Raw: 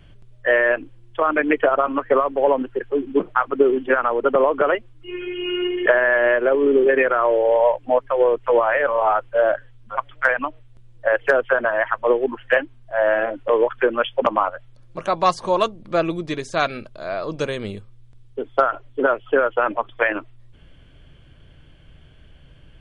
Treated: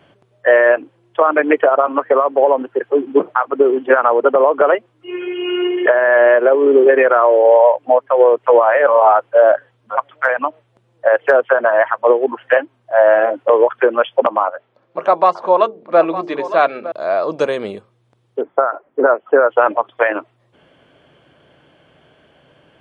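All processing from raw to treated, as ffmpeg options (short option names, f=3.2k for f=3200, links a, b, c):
-filter_complex "[0:a]asettb=1/sr,asplit=3[a][b][c];[a]atrim=end=14.444[d];[b]atrim=start=14.44:end=16.92,asetpts=PTS-STARTPTS,afade=t=in:d=0.004:c=qsin,afade=t=out:st=2.476:d=0.004:c=qsin,highpass=180,lowpass=3.3k,bandreject=f=50:t=h:w=6,bandreject=f=100:t=h:w=6,bandreject=f=150:t=h:w=6,bandreject=f=200:t=h:w=6,bandreject=f=250:t=h:w=6,bandreject=f=300:t=h:w=6,bandreject=f=350:t=h:w=6,bandreject=f=400:t=h:w=6,bandreject=f=450:t=h:w=6,aecho=1:1:908:0.178,atrim=end_sample=109368[e];[c]atrim=start=16.916[f];[d][e]acrossfade=d=0.004:c1=hsin:c2=qsin[g];[g][f]acrossfade=d=0.004:c1=qsin:c2=hsin,asettb=1/sr,asplit=3[h][i][j];[h]atrim=end=18.414[k];[i]atrim=start=18.41:end=19.49,asetpts=PTS-STARTPTS,afade=t=in:d=0.004:c=qsin,afade=t=out:st=1.076:d=0.004:c=qsin,lowpass=f=2k:w=0.5412,lowpass=f=2k:w=1.3066,bandreject=f=60:t=h:w=6,bandreject=f=120:t=h:w=6,bandreject=f=180:t=h:w=6[l];[j]atrim=start=19.486[m];[k][l]acrossfade=d=0.004:c1=hsin:c2=qsin[n];[n][m]acrossfade=d=0.004:c1=qsin:c2=hsin,highpass=180,equalizer=f=720:t=o:w=2.4:g=11.5,alimiter=limit=-0.5dB:level=0:latency=1:release=354,volume=-1dB"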